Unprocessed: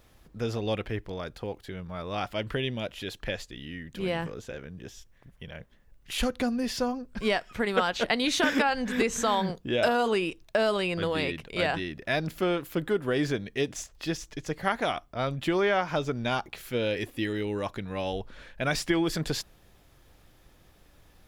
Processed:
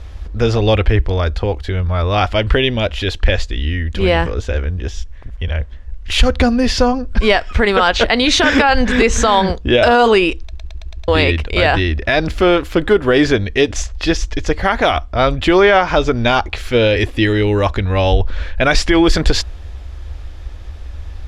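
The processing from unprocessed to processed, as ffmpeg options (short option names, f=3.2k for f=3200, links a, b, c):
-filter_complex "[0:a]asplit=7[a][b][c][d][e][f][g];[a]atrim=end=10.532[h];[b]atrim=start=10.418:end=10.532[i];[c]atrim=start=10.418:end=10.532[j];[d]atrim=start=10.418:end=10.532[k];[e]atrim=start=10.418:end=10.532[l];[f]atrim=start=10.418:end=10.532[m];[g]atrim=start=11.078[n];[h][i]acrossfade=d=0.004:c1=hsin:c2=hsin[o];[o][j]acrossfade=d=0.004:c1=hsin:c2=hsin[p];[p][k]acrossfade=d=0.004:c1=hsin:c2=hsin[q];[q][l]acrossfade=d=0.004:c1=hsin:c2=hsin[r];[r][m]acrossfade=d=0.004:c1=hsin:c2=hsin[s];[s][n]acrossfade=d=0.004:c1=hsin:c2=hsin,lowpass=5.9k,lowshelf=f=100:t=q:w=3:g=12,alimiter=level_in=17.5dB:limit=-1dB:release=50:level=0:latency=1,volume=-1dB"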